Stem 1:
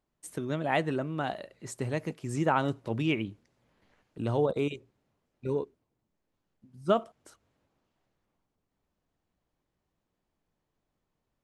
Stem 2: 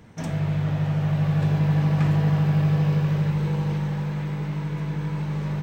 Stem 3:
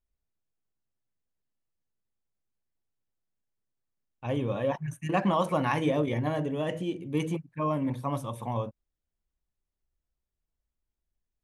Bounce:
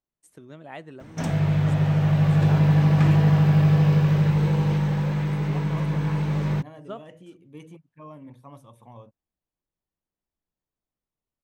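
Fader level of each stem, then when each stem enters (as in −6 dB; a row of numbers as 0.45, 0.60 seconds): −12.0, +3.0, −14.5 decibels; 0.00, 1.00, 0.40 seconds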